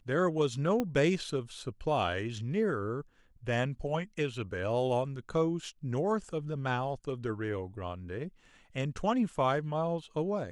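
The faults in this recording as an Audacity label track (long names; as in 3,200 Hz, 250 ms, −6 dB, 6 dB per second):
0.800000	0.800000	click −18 dBFS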